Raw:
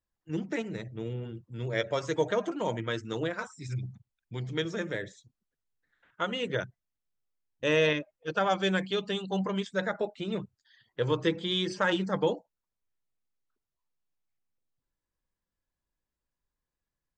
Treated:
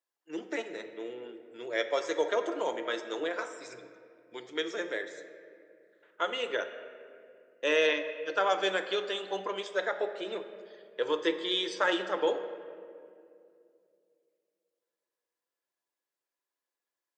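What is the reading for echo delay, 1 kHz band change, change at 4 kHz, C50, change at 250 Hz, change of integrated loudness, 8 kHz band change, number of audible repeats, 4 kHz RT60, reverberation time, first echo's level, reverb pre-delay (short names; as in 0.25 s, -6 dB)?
none, +0.5 dB, +0.5 dB, 10.0 dB, -6.0 dB, -0.5 dB, +0.5 dB, none, 1.3 s, 2.4 s, none, 3 ms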